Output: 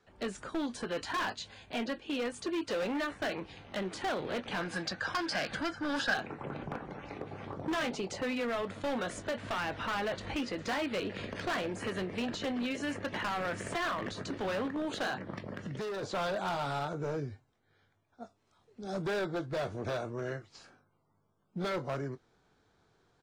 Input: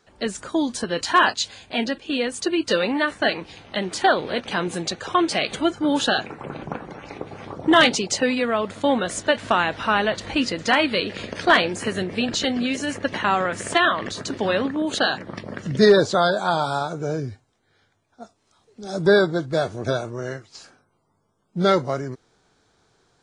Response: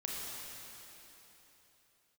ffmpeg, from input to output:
-filter_complex "[0:a]acrossover=split=320|1800[a][b][c];[a]acompressor=threshold=-33dB:ratio=4[d];[b]acompressor=threshold=-20dB:ratio=4[e];[c]acompressor=threshold=-30dB:ratio=4[f];[d][e][f]amix=inputs=3:normalize=0,bass=f=250:g=2,treble=f=4k:g=-8,asplit=2[g][h];[h]adelay=21,volume=-13dB[i];[g][i]amix=inputs=2:normalize=0,asoftclip=type=hard:threshold=-23dB,asettb=1/sr,asplit=3[j][k][l];[j]atrim=end=4.614[m];[k]atrim=start=4.61:end=6.14,asetpts=PTS-STARTPTS,afade=t=in:d=0.004:c=qsin,afade=t=out:st=1.526:d=0.004:c=qsin,equalizer=f=400:t=o:w=0.33:g=-10,equalizer=f=1.6k:t=o:w=0.33:g=12,equalizer=f=5k:t=o:w=0.33:g=12[n];[l]atrim=start=6.136[o];[m][n]acrossfade=d=0.004:c1=hsin:c2=qsin[p];[p][o]acrossfade=d=0.004:c1=qsin:c2=hsin,asettb=1/sr,asplit=3[q][r][s];[q]atrim=end=15.344[t];[r]atrim=start=15.34:end=16.03,asetpts=PTS-STARTPTS,afade=t=in:d=0.004:c=qsin,afade=t=out:st=0.686:d=0.004:c=qsin,acompressor=threshold=-29dB:ratio=6[u];[s]atrim=start=16.026[v];[t][u]acrossfade=d=0.004:c1=hsin:c2=qsin[w];[w][v]acrossfade=d=0.004:c1=qsin:c2=hsin,volume=-7dB"

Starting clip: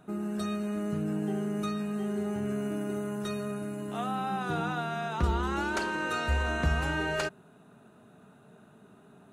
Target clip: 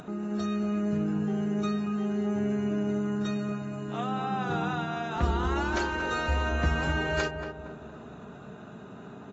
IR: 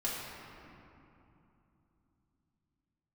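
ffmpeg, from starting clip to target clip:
-filter_complex "[0:a]acompressor=mode=upward:threshold=-36dB:ratio=2.5,asplit=2[a][b];[b]adelay=232,lowpass=f=1.2k:p=1,volume=-6dB,asplit=2[c][d];[d]adelay=232,lowpass=f=1.2k:p=1,volume=0.54,asplit=2[e][f];[f]adelay=232,lowpass=f=1.2k:p=1,volume=0.54,asplit=2[g][h];[h]adelay=232,lowpass=f=1.2k:p=1,volume=0.54,asplit=2[i][j];[j]adelay=232,lowpass=f=1.2k:p=1,volume=0.54,asplit=2[k][l];[l]adelay=232,lowpass=f=1.2k:p=1,volume=0.54,asplit=2[m][n];[n]adelay=232,lowpass=f=1.2k:p=1,volume=0.54[o];[a][c][e][g][i][k][m][o]amix=inputs=8:normalize=0" -ar 24000 -c:a aac -b:a 24k

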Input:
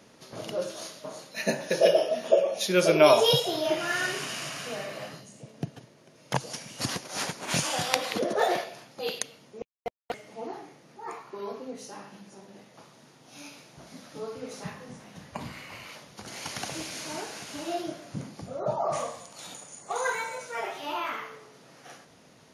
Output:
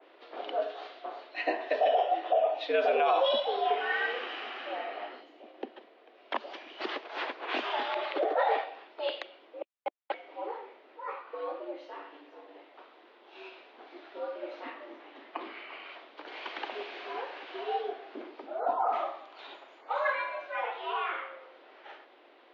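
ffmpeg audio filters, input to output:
-af "highpass=f=240:t=q:w=0.5412,highpass=f=240:t=q:w=1.307,lowpass=f=3.5k:t=q:w=0.5176,lowpass=f=3.5k:t=q:w=0.7071,lowpass=f=3.5k:t=q:w=1.932,afreqshift=93,alimiter=limit=-17dB:level=0:latency=1:release=44,adynamicequalizer=threshold=0.00562:dfrequency=2100:dqfactor=0.7:tfrequency=2100:tqfactor=0.7:attack=5:release=100:ratio=0.375:range=2:mode=cutabove:tftype=highshelf"

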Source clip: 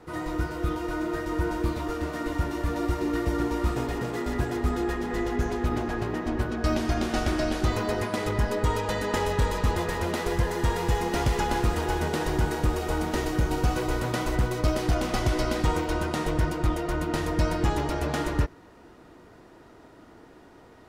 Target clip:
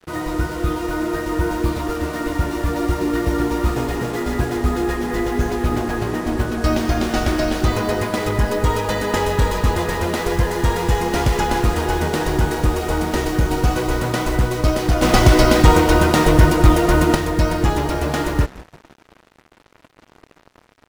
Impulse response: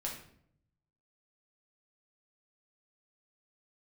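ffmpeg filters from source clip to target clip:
-filter_complex "[0:a]asplit=4[a][b][c][d];[b]adelay=168,afreqshift=-110,volume=-21.5dB[e];[c]adelay=336,afreqshift=-220,volume=-28.2dB[f];[d]adelay=504,afreqshift=-330,volume=-35dB[g];[a][e][f][g]amix=inputs=4:normalize=0,acrusher=bits=6:mix=0:aa=0.5,asettb=1/sr,asplit=3[h][i][j];[h]atrim=end=15.024[k];[i]atrim=start=15.02:end=17.15,asetpts=PTS-STARTPTS,afade=t=in:d=0.004:c=qsin,afade=t=out:st=2.126:d=0.004:c=qsin,acontrast=70[l];[j]atrim=start=17.146[m];[k][l]acrossfade=d=0.004:c1=hsin:c2=qsin[n];[n][m]acrossfade=d=0.004:c1=qsin:c2=hsin,volume=7dB"

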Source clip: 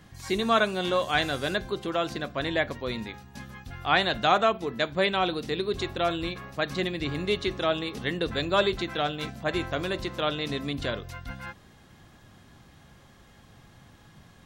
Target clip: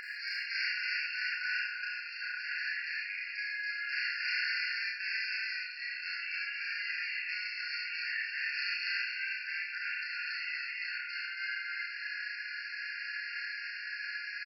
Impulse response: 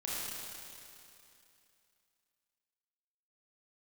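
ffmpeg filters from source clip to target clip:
-filter_complex "[0:a]acompressor=mode=upward:threshold=-28dB:ratio=2.5,aeval=exprs='(mod(6.68*val(0)+1,2)-1)/6.68':c=same,acompressor=threshold=-35dB:ratio=6,asoftclip=type=tanh:threshold=-32dB,aresample=11025,aresample=44100,asplit=2[a][b];[b]adelay=31,volume=-3dB[c];[a][c]amix=inputs=2:normalize=0,aecho=1:1:78.72|279.9:0.282|0.891[d];[1:a]atrim=start_sample=2205,atrim=end_sample=6615[e];[d][e]afir=irnorm=-1:irlink=0,afftfilt=real='re*eq(mod(floor(b*sr/1024/1400),2),1)':imag='im*eq(mod(floor(b*sr/1024/1400),2),1)':win_size=1024:overlap=0.75,volume=7.5dB"

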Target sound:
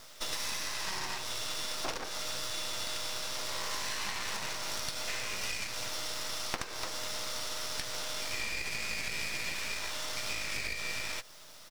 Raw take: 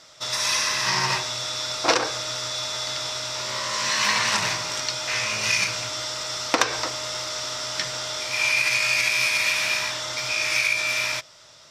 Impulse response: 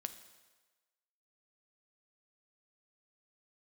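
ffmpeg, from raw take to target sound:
-filter_complex "[0:a]highpass=150,acrusher=bits=6:dc=4:mix=0:aa=0.000001,acompressor=threshold=-29dB:ratio=16,asplit=3[a][b][c];[b]asetrate=35002,aresample=44100,atempo=1.25992,volume=-10dB[d];[c]asetrate=37084,aresample=44100,atempo=1.18921,volume=-16dB[e];[a][d][e]amix=inputs=3:normalize=0,aeval=exprs='max(val(0),0)':c=same"

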